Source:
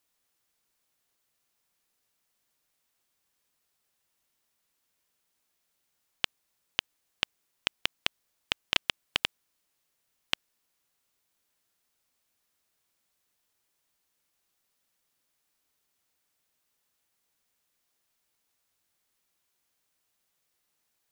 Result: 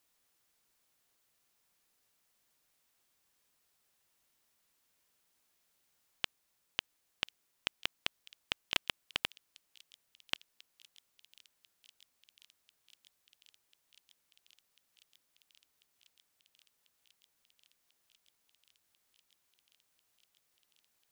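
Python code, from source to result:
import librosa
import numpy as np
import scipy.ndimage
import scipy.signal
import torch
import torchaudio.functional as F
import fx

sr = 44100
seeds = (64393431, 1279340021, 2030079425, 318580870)

y = fx.echo_wet_highpass(x, sr, ms=1043, feedback_pct=85, hz=4000.0, wet_db=-22.0)
y = fx.transient(y, sr, attack_db=-8, sustain_db=-2)
y = F.gain(torch.from_numpy(y), 1.5).numpy()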